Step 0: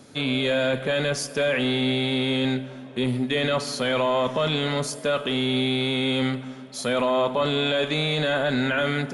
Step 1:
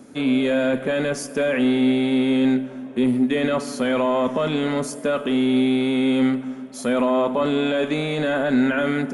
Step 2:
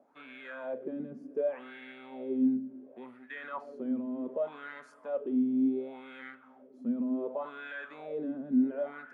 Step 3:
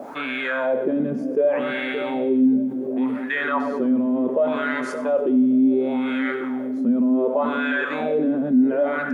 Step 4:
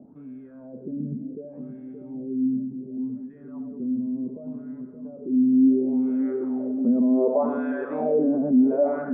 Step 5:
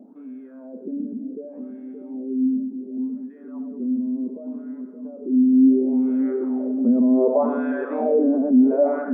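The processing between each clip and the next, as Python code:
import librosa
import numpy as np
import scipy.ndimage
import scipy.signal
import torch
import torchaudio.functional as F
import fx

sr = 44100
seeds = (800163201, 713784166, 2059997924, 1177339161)

y1 = fx.graphic_eq(x, sr, hz=(125, 250, 4000), db=(-7, 8, -9))
y1 = y1 * librosa.db_to_amplitude(1.0)
y2 = fx.wah_lfo(y1, sr, hz=0.68, low_hz=220.0, high_hz=1700.0, q=5.4)
y2 = y2 * librosa.db_to_amplitude(-5.0)
y3 = fx.echo_split(y2, sr, split_hz=480.0, low_ms=572, high_ms=97, feedback_pct=52, wet_db=-13.5)
y3 = fx.env_flatten(y3, sr, amount_pct=50)
y3 = y3 * librosa.db_to_amplitude(8.0)
y4 = fx.notch(y3, sr, hz=540.0, q=15.0)
y4 = fx.dmg_crackle(y4, sr, seeds[0], per_s=180.0, level_db=-38.0)
y4 = fx.filter_sweep_lowpass(y4, sr, from_hz=170.0, to_hz=660.0, start_s=5.14, end_s=6.81, q=1.3)
y4 = y4 * librosa.db_to_amplitude(-2.0)
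y5 = fx.brickwall_highpass(y4, sr, low_hz=190.0)
y5 = y5 * librosa.db_to_amplitude(3.0)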